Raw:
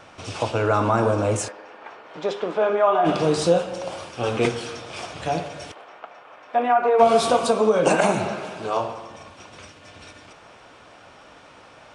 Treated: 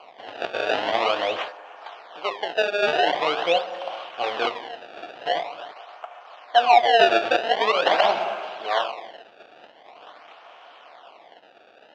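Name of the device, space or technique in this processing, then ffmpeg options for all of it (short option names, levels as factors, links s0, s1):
circuit-bent sampling toy: -af "acrusher=samples=24:mix=1:aa=0.000001:lfo=1:lforange=38.4:lforate=0.45,highpass=580,equalizer=f=720:t=q:w=4:g=8,equalizer=f=1100:t=q:w=4:g=3,equalizer=f=3000:t=q:w=4:g=7,lowpass=f=4200:w=0.5412,lowpass=f=4200:w=1.3066,volume=0.891"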